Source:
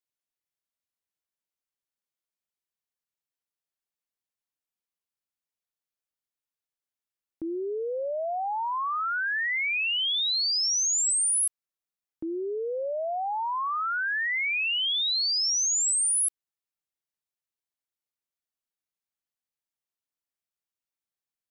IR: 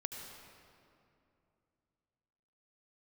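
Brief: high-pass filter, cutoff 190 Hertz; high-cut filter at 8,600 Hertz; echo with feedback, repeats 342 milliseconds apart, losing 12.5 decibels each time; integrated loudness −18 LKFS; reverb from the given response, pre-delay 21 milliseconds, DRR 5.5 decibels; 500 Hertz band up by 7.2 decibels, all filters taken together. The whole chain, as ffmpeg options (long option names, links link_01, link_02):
-filter_complex "[0:a]highpass=190,lowpass=8600,equalizer=frequency=500:width_type=o:gain=9,aecho=1:1:342|684|1026:0.237|0.0569|0.0137,asplit=2[link_01][link_02];[1:a]atrim=start_sample=2205,adelay=21[link_03];[link_02][link_03]afir=irnorm=-1:irlink=0,volume=-5dB[link_04];[link_01][link_04]amix=inputs=2:normalize=0,volume=5.5dB"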